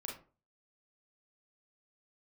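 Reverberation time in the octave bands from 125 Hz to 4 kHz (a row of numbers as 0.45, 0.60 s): 0.50, 0.40, 0.40, 0.35, 0.30, 0.20 s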